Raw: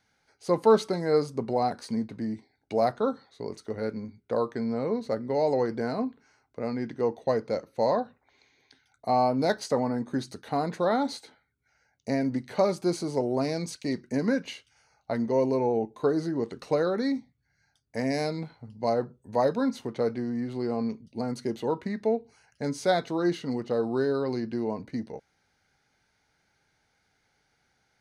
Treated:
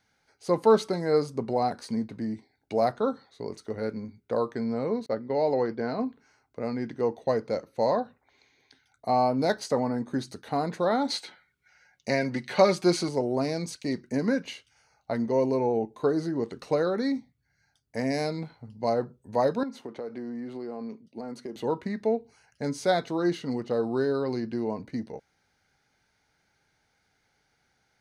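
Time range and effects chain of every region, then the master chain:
5.06–6.00 s: low-pass 5 kHz 24 dB/octave + expander -33 dBFS + peaking EQ 60 Hz -6 dB 1.7 oct
11.10–13.09 s: peaking EQ 2.6 kHz +9.5 dB 2.7 oct + comb 5.5 ms, depth 44%
19.63–21.56 s: high-pass 230 Hz + treble shelf 2.9 kHz -7.5 dB + compression, threshold -32 dBFS
whole clip: none

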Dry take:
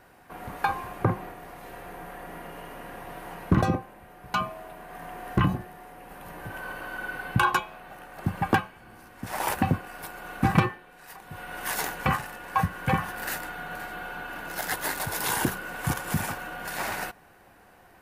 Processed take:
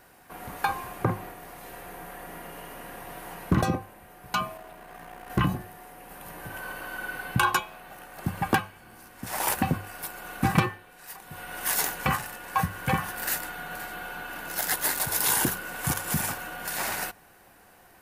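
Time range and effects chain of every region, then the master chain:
4.57–5.30 s: peaking EQ 12 kHz -6 dB 1.1 oct + transformer saturation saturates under 370 Hz
whole clip: treble shelf 4.2 kHz +9.5 dB; hum notches 50/100 Hz; trim -1.5 dB

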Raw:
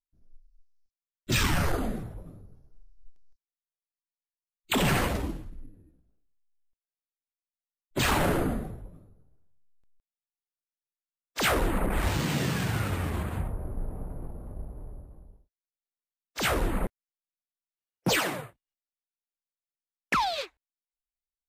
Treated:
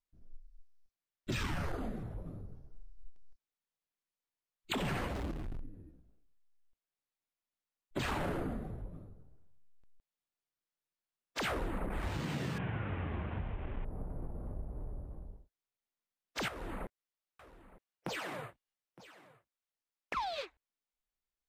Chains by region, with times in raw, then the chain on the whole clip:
5.14–5.61 s: gate -31 dBFS, range -17 dB + compression 3:1, threshold -33 dBFS + power-law waveshaper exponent 0.35
12.58–13.85 s: one-bit delta coder 16 kbps, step -35.5 dBFS + band-stop 1.3 kHz, Q 26
16.48–20.17 s: bass shelf 360 Hz -6.5 dB + compression 2.5:1, threshold -39 dBFS + delay 913 ms -22 dB
whole clip: low-pass 3.4 kHz 6 dB/octave; compression 3:1, threshold -42 dBFS; trim +3.5 dB

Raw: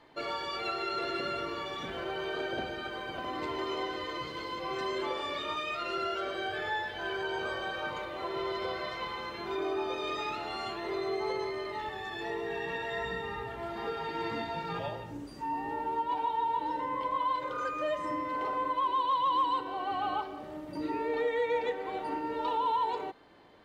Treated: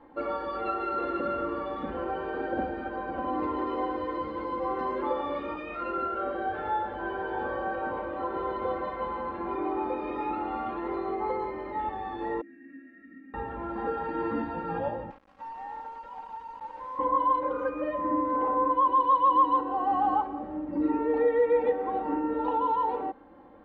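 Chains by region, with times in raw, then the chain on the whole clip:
5.90–10.77 s: distance through air 90 m + delay 645 ms -11 dB
12.41–13.34 s: vowel filter i + peaking EQ 86 Hz -10.5 dB 1.4 oct + static phaser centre 670 Hz, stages 8
15.10–16.99 s: high-pass 640 Hz 24 dB/octave + compression 12:1, threshold -39 dBFS + word length cut 8-bit, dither none
whole clip: low-pass 1.1 kHz 12 dB/octave; band-stop 620 Hz, Q 12; comb 3.7 ms, depth 72%; trim +5.5 dB

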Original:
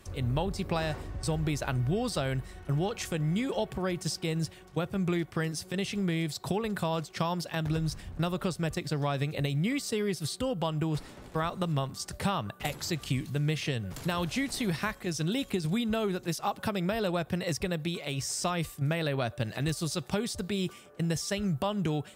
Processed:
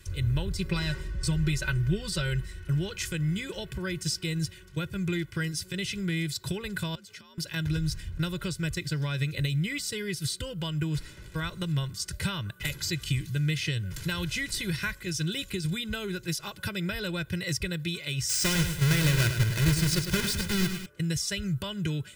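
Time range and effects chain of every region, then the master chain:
0.58–2.46 s: treble shelf 11 kHz -4.5 dB + comb 5.3 ms, depth 62%
6.95–7.38 s: compression 20:1, threshold -43 dBFS + frequency shift +54 Hz
18.29–20.86 s: square wave that keeps the level + feedback delay 104 ms, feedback 45%, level -8 dB
whole clip: high-order bell 680 Hz -14 dB; comb 2 ms, depth 83%; trim +1.5 dB

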